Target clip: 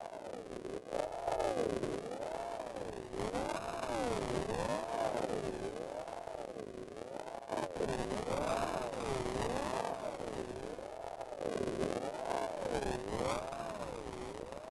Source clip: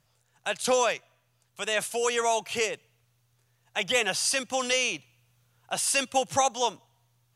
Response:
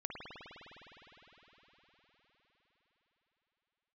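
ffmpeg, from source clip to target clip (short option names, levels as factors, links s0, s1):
-filter_complex "[0:a]aeval=exprs='val(0)+0.5*0.0422*sgn(val(0))':c=same,highpass=52,aemphasis=mode=production:type=cd,bandreject=f=60:t=h:w=6,bandreject=f=120:t=h:w=6,aresample=16000,aeval=exprs='max(val(0),0)':c=same,aresample=44100,adynamicequalizer=threshold=0.00794:dfrequency=2000:dqfactor=1.4:tfrequency=2000:tqfactor=1.4:attack=5:release=100:ratio=0.375:range=3.5:mode=boostabove:tftype=bell,asplit=2[s0][s1];[s1]acompressor=threshold=0.00501:ratio=6,volume=0.794[s2];[s0][s2]amix=inputs=2:normalize=0,acrusher=samples=34:mix=1:aa=0.000001:lfo=1:lforange=34:lforate=0.4,alimiter=limit=0.126:level=0:latency=1:release=82,asetrate=22050,aresample=44100,aecho=1:1:939:0.299,aeval=exprs='val(0)*sin(2*PI*530*n/s+530*0.3/0.81*sin(2*PI*0.81*n/s))':c=same,volume=0.473"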